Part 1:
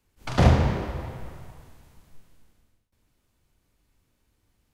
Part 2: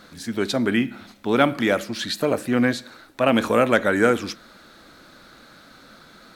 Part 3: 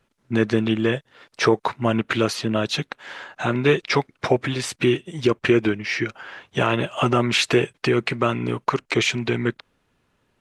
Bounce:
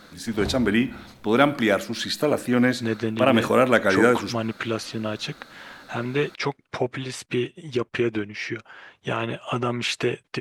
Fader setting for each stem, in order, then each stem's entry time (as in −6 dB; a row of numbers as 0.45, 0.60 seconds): −15.5, 0.0, −6.0 decibels; 0.00, 0.00, 2.50 seconds